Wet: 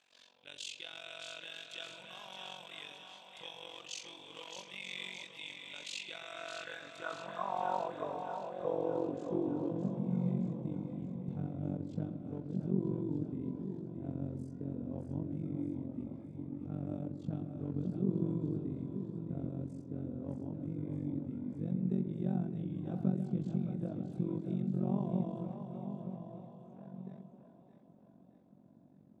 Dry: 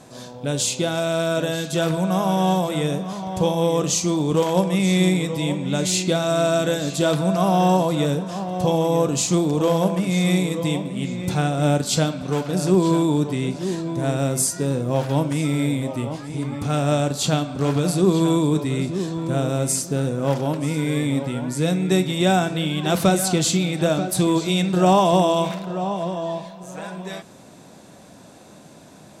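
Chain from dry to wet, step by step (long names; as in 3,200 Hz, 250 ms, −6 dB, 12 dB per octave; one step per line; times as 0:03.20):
band-pass filter sweep 2,800 Hz → 210 Hz, 0:05.94–0:09.93
amplitude modulation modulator 46 Hz, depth 90%
echo with a time of its own for lows and highs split 480 Hz, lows 134 ms, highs 617 ms, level −7 dB
level −7.5 dB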